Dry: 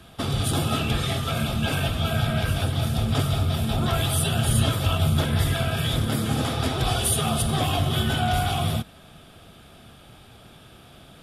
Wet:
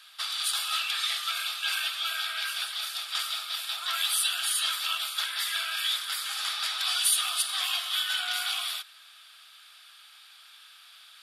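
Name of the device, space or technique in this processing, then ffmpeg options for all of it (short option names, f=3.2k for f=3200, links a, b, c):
headphones lying on a table: -af "highpass=f=1.3k:w=0.5412,highpass=f=1.3k:w=1.3066,equalizer=f=4.4k:t=o:w=0.43:g=8"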